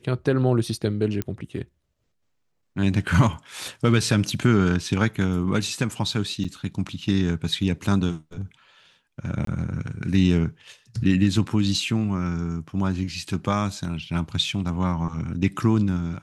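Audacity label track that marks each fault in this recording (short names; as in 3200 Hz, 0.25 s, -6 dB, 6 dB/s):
1.220000	1.220000	pop -13 dBFS
6.440000	6.450000	gap 5.6 ms
9.450000	9.470000	gap 23 ms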